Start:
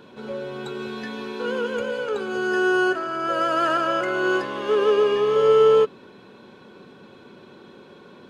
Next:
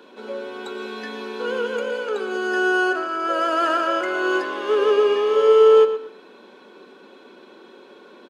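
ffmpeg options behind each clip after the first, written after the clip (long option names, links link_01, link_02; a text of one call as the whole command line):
ffmpeg -i in.wav -filter_complex "[0:a]highpass=frequency=260:width=0.5412,highpass=frequency=260:width=1.3066,asplit=2[link_01][link_02];[link_02]adelay=118,lowpass=frequency=4500:poles=1,volume=-10.5dB,asplit=2[link_03][link_04];[link_04]adelay=118,lowpass=frequency=4500:poles=1,volume=0.25,asplit=2[link_05][link_06];[link_06]adelay=118,lowpass=frequency=4500:poles=1,volume=0.25[link_07];[link_03][link_05][link_07]amix=inputs=3:normalize=0[link_08];[link_01][link_08]amix=inputs=2:normalize=0,volume=1dB" out.wav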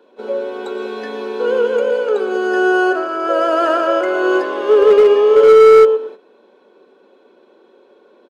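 ffmpeg -i in.wav -af "equalizer=frequency=530:width_type=o:width=1.6:gain=10.5,asoftclip=type=hard:threshold=-4.5dB,agate=range=-11dB:threshold=-31dB:ratio=16:detection=peak" out.wav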